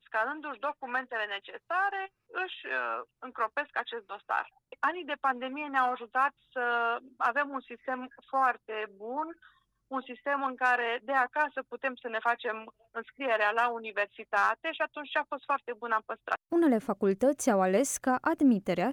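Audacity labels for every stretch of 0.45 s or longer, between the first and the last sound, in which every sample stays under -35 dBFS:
9.300000	9.920000	silence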